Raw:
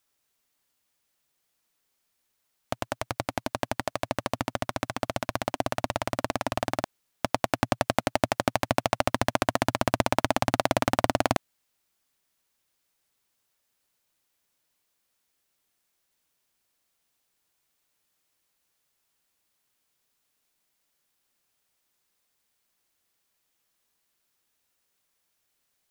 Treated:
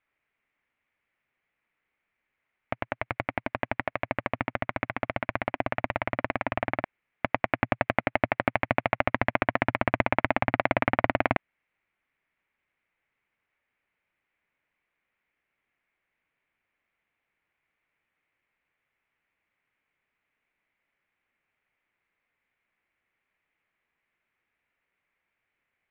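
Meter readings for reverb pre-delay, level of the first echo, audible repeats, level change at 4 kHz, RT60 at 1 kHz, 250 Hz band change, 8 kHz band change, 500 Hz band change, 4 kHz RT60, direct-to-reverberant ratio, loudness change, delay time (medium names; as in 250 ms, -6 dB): no reverb, no echo, no echo, -8.5 dB, no reverb, -1.0 dB, under -35 dB, -1.0 dB, no reverb, no reverb, 0.0 dB, no echo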